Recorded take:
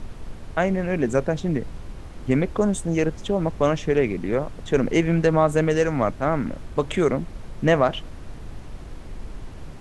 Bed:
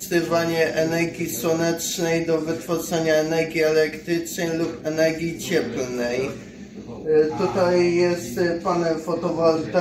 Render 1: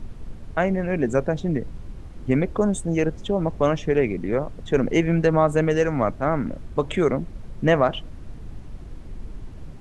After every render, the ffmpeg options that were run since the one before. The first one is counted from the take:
ffmpeg -i in.wav -af "afftdn=noise_reduction=7:noise_floor=-38" out.wav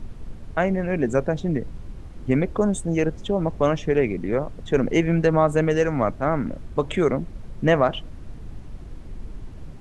ffmpeg -i in.wav -af anull out.wav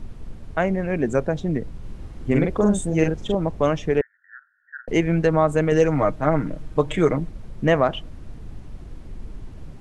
ffmpeg -i in.wav -filter_complex "[0:a]asettb=1/sr,asplit=3[link_01][link_02][link_03];[link_01]atrim=end=1.794[link_04];[link_02]atrim=start=1.79:end=3.35,asetpts=PTS-STARTPTS,afade=type=in:duration=0.004:curve=qsin,afade=type=out:start_time=1.556:duration=0.004:curve=qsin,asplit=2[link_05][link_06];[link_06]adelay=44,volume=-2.5dB[link_07];[link_05][link_07]amix=inputs=2:normalize=0,atrim=end_sample=68796[link_08];[link_03]atrim=start=3.346[link_09];[link_04][link_08]acrossfade=duration=0.004:curve1=hsin:curve2=qsin[link_10];[link_10][link_09]acrossfade=duration=0.004:curve1=qsin:curve2=hsin,asettb=1/sr,asplit=3[link_11][link_12][link_13];[link_11]atrim=end=4.014[link_14];[link_12]atrim=start=4.01:end=4.88,asetpts=PTS-STARTPTS,afade=type=in:duration=0.004:curve=qsin,afade=type=out:start_time=0.866:duration=0.004:curve=qsin,asuperpass=centerf=1600:order=12:qfactor=3.5[link_15];[link_13]atrim=start=4.876[link_16];[link_14][link_15]acrossfade=duration=0.004:curve1=hsin:curve2=qsin[link_17];[link_17][link_16]acrossfade=duration=0.004:curve1=qsin:curve2=hsin,asettb=1/sr,asplit=3[link_18][link_19][link_20];[link_18]atrim=end=5.714[link_21];[link_19]atrim=start=5.71:end=7.3,asetpts=PTS-STARTPTS,afade=type=in:duration=0.004:curve=qsin,afade=type=out:start_time=1.586:duration=0.004:curve=qsin,aecho=1:1:6.5:0.65,atrim=end_sample=70119[link_22];[link_20]atrim=start=7.296[link_23];[link_21][link_22]acrossfade=duration=0.004:curve1=hsin:curve2=qsin[link_24];[link_24][link_23]acrossfade=duration=0.004:curve1=qsin:curve2=hsin" out.wav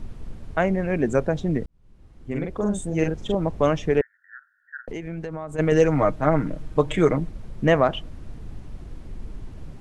ffmpeg -i in.wav -filter_complex "[0:a]asplit=3[link_01][link_02][link_03];[link_01]afade=type=out:start_time=4.76:duration=0.02[link_04];[link_02]acompressor=threshold=-30dB:ratio=5:attack=3.2:release=140:knee=1:detection=peak,afade=type=in:start_time=4.76:duration=0.02,afade=type=out:start_time=5.58:duration=0.02[link_05];[link_03]afade=type=in:start_time=5.58:duration=0.02[link_06];[link_04][link_05][link_06]amix=inputs=3:normalize=0,asplit=2[link_07][link_08];[link_07]atrim=end=1.66,asetpts=PTS-STARTPTS,afade=type=out:start_time=1.656:duration=0.004:curve=hsin[link_09];[link_08]atrim=start=1.66,asetpts=PTS-STARTPTS,afade=type=in:duration=1.95[link_10];[link_09][link_10]concat=n=2:v=0:a=1" out.wav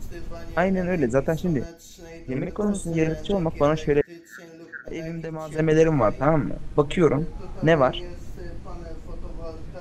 ffmpeg -i in.wav -i bed.wav -filter_complex "[1:a]volume=-20.5dB[link_01];[0:a][link_01]amix=inputs=2:normalize=0" out.wav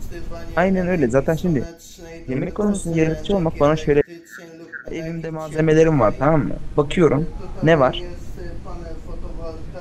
ffmpeg -i in.wav -af "volume=4.5dB,alimiter=limit=-3dB:level=0:latency=1" out.wav

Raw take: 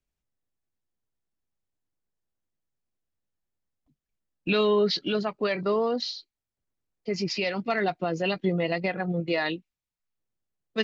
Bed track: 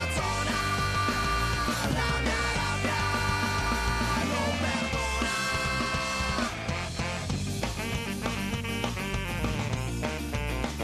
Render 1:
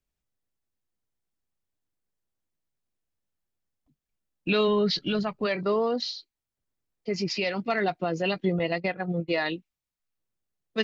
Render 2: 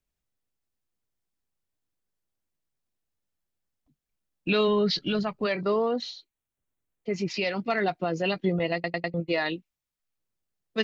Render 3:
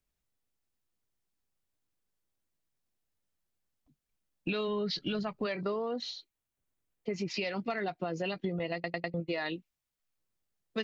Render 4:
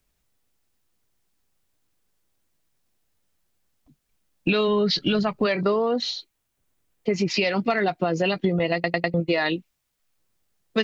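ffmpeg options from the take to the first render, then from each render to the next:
ffmpeg -i in.wav -filter_complex "[0:a]asplit=3[link_01][link_02][link_03];[link_01]afade=type=out:start_time=4.67:duration=0.02[link_04];[link_02]asubboost=boost=4.5:cutoff=150,afade=type=in:start_time=4.67:duration=0.02,afade=type=out:start_time=5.45:duration=0.02[link_05];[link_03]afade=type=in:start_time=5.45:duration=0.02[link_06];[link_04][link_05][link_06]amix=inputs=3:normalize=0,asettb=1/sr,asplit=3[link_07][link_08][link_09];[link_07]atrim=end=8.594[link_10];[link_08]atrim=start=8.59:end=9.52,asetpts=PTS-STARTPTS,afade=type=in:duration=0.004:curve=qsin,afade=type=out:start_time=0.926:duration=0.004:curve=qsin,agate=range=-33dB:threshold=-28dB:ratio=3:release=100:detection=peak[link_11];[link_09]atrim=start=9.516[link_12];[link_10][link_11]acrossfade=duration=0.004:curve1=hsin:curve2=qsin[link_13];[link_13][link_12]acrossfade=duration=0.004:curve1=qsin:curve2=hsin" out.wav
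ffmpeg -i in.wav -filter_complex "[0:a]asettb=1/sr,asplit=3[link_01][link_02][link_03];[link_01]atrim=end=5.824[link_04];[link_02]atrim=start=5.82:end=7.34,asetpts=PTS-STARTPTS,afade=type=in:duration=0.004:curve=qsin,afade=type=out:start_time=1.516:duration=0.004:curve=qsin,equalizer=frequency=4900:width=4.1:gain=-13[link_05];[link_03]atrim=start=7.336[link_06];[link_04][link_05]acrossfade=duration=0.004:curve1=hsin:curve2=qsin[link_07];[link_07][link_06]acrossfade=duration=0.004:curve1=qsin:curve2=hsin,asplit=5[link_08][link_09][link_10][link_11][link_12];[link_08]atrim=end=8.842[link_13];[link_09]atrim=start=8.738:end=8.842[link_14];[link_10]atrim=start=8.738:end=8.842[link_15];[link_11]atrim=start=8.738:end=8.842[link_16];[link_12]atrim=start=9.138[link_17];[link_13][link_14]acrossfade=duration=0.004:curve1=hsin:curve2=hsin[link_18];[link_18][link_15]acrossfade=duration=0.004:curve1=hsin:curve2=hsin[link_19];[link_19][link_16]acrossfade=duration=0.004:curve1=hsin:curve2=hsin[link_20];[link_20][link_17]acrossfade=duration=0.004:curve1=hsin:curve2=hsin" out.wav
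ffmpeg -i in.wav -af "acompressor=threshold=-31dB:ratio=5" out.wav
ffmpeg -i in.wav -af "volume=11.5dB" out.wav

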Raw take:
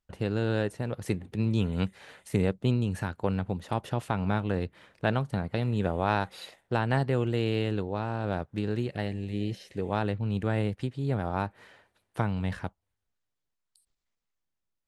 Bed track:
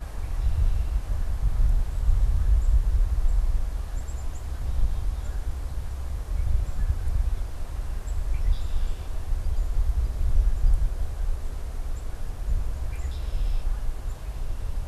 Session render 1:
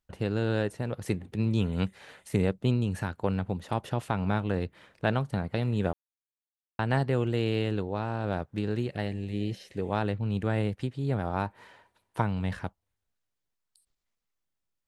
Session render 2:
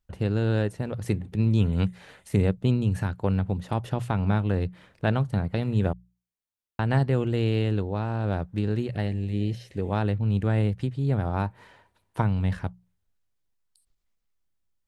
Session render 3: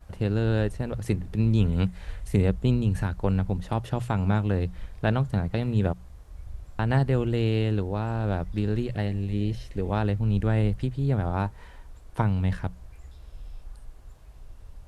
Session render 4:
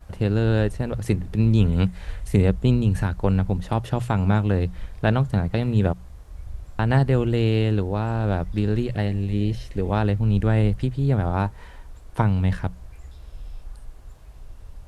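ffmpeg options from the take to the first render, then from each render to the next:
ffmpeg -i in.wav -filter_complex "[0:a]asettb=1/sr,asplit=3[link_01][link_02][link_03];[link_01]atrim=end=11.454[link_04];[link_02]atrim=start=11.45:end=12.22,asetpts=PTS-STARTPTS,afade=type=in:duration=0.004:curve=qsin,afade=type=out:start_time=0.766:duration=0.004:curve=qsin,equalizer=frequency=950:width=7.4:gain=10.5[link_05];[link_03]atrim=start=12.216[link_06];[link_04][link_05]acrossfade=duration=0.004:curve1=hsin:curve2=qsin[link_07];[link_07][link_06]acrossfade=duration=0.004:curve1=qsin:curve2=hsin,asplit=3[link_08][link_09][link_10];[link_08]atrim=end=5.93,asetpts=PTS-STARTPTS,afade=type=out:start_time=5.926:duration=0.004:curve=hsin[link_11];[link_09]atrim=start=5.93:end=6.79,asetpts=PTS-STARTPTS,volume=0[link_12];[link_10]atrim=start=6.79,asetpts=PTS-STARTPTS,afade=type=in:duration=0.004:curve=hsin[link_13];[link_11][link_12][link_13]concat=n=3:v=0:a=1" out.wav
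ffmpeg -i in.wav -af "lowshelf=frequency=160:gain=10,bandreject=frequency=60:width_type=h:width=6,bandreject=frequency=120:width_type=h:width=6,bandreject=frequency=180:width_type=h:width=6" out.wav
ffmpeg -i in.wav -i bed.wav -filter_complex "[1:a]volume=-15dB[link_01];[0:a][link_01]amix=inputs=2:normalize=0" out.wav
ffmpeg -i in.wav -af "volume=4dB" out.wav

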